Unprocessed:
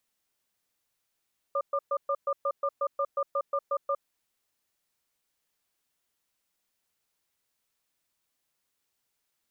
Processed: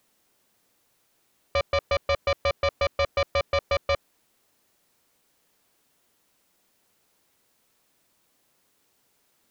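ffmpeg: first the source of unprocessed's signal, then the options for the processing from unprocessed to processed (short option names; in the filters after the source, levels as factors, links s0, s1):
-f lavfi -i "aevalsrc='0.0422*(sin(2*PI*560*t)+sin(2*PI*1200*t))*clip(min(mod(t,0.18),0.06-mod(t,0.18))/0.005,0,1)':d=2.4:s=44100"
-filter_complex "[0:a]equalizer=f=310:w=0.36:g=7.5,asplit=2[s0][s1];[s1]aeval=exprs='0.15*sin(PI/2*3.55*val(0)/0.15)':c=same,volume=0.422[s2];[s0][s2]amix=inputs=2:normalize=0"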